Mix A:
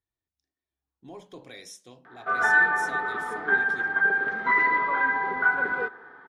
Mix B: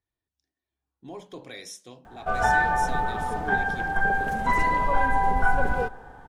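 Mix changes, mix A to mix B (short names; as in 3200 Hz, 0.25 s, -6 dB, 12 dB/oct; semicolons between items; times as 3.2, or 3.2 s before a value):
speech +3.5 dB; background: remove speaker cabinet 350–3800 Hz, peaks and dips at 390 Hz +5 dB, 560 Hz -9 dB, 790 Hz -10 dB, 1300 Hz +8 dB, 1900 Hz +8 dB, 2800 Hz -7 dB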